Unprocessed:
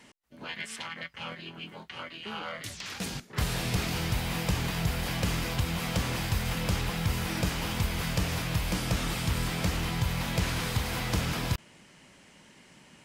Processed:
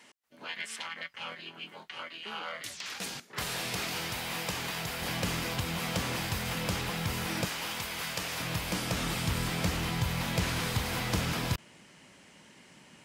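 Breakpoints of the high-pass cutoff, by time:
high-pass 6 dB/octave
520 Hz
from 5.01 s 180 Hz
from 7.45 s 750 Hz
from 8.40 s 200 Hz
from 8.96 s 84 Hz

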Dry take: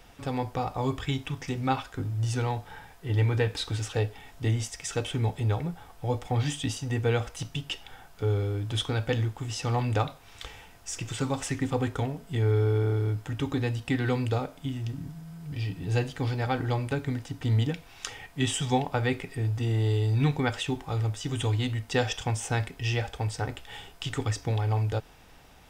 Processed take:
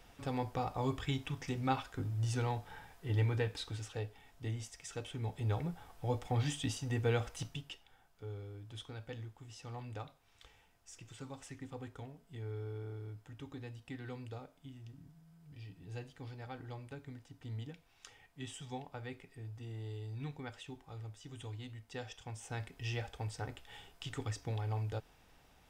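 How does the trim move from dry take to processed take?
3.11 s -6.5 dB
3.97 s -13 dB
5.18 s -13 dB
5.58 s -6.5 dB
7.43 s -6.5 dB
7.86 s -18.5 dB
22.21 s -18.5 dB
22.79 s -10.5 dB

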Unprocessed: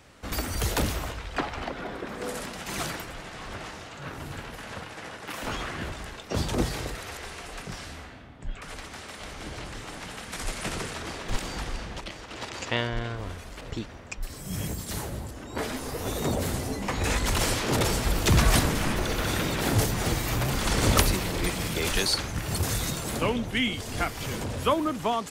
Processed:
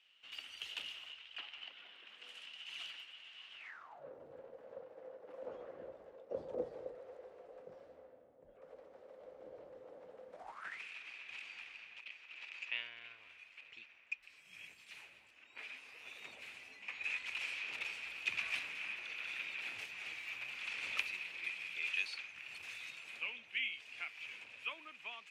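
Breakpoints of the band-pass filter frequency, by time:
band-pass filter, Q 9.6
3.57 s 2.9 kHz
4.07 s 520 Hz
10.33 s 520 Hz
10.81 s 2.5 kHz

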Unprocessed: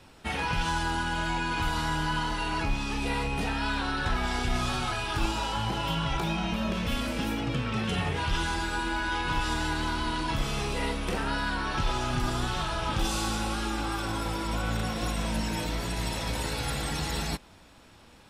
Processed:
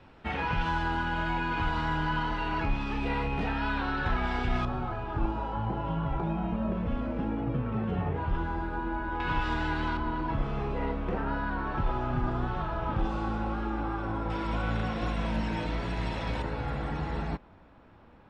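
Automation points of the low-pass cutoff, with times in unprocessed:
2.4 kHz
from 4.65 s 1 kHz
from 9.20 s 2.4 kHz
from 9.97 s 1.3 kHz
from 14.30 s 2.6 kHz
from 16.42 s 1.5 kHz

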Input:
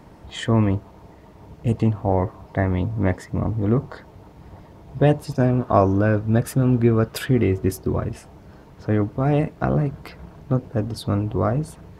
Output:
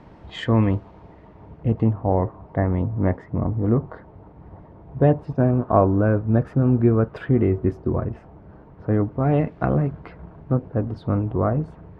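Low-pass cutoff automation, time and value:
0.77 s 3.7 kHz
1.94 s 1.4 kHz
9.05 s 1.4 kHz
9.54 s 2.9 kHz
10.19 s 1.6 kHz

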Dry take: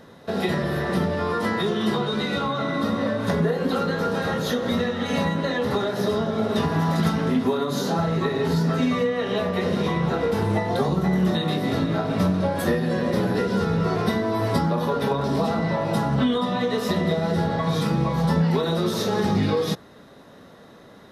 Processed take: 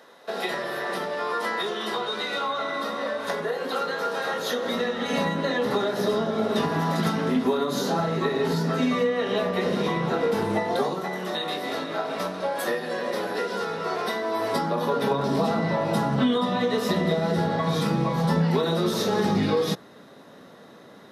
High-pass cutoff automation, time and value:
4.24 s 520 Hz
5.30 s 200 Hz
10.55 s 200 Hz
11.10 s 490 Hz
14.21 s 490 Hz
15.20 s 150 Hz

